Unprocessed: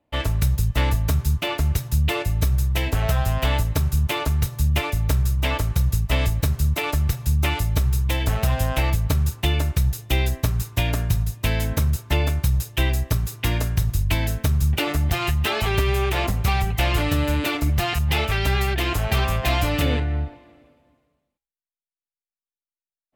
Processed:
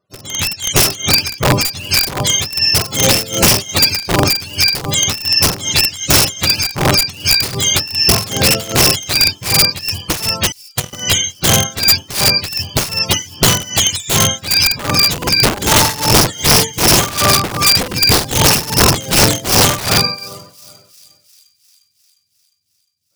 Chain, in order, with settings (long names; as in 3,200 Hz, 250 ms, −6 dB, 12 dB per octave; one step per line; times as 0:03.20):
frequency axis turned over on the octave scale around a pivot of 590 Hz
notch filter 5,700 Hz, Q 18
0:10.52–0:10.93: power curve on the samples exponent 3
wrap-around overflow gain 17.5 dB
amplitude tremolo 2.6 Hz, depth 87%
automatic gain control gain up to 12 dB
on a send: delay with a high-pass on its return 354 ms, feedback 63%, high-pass 4,700 Hz, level −22 dB
on the sum: level +3 dB